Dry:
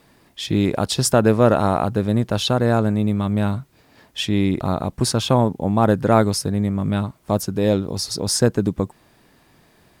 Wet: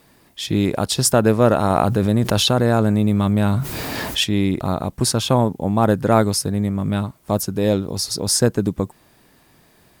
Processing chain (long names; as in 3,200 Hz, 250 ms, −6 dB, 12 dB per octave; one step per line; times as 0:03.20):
high-shelf EQ 8,500 Hz +7.5 dB
0:01.70–0:04.24: envelope flattener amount 70%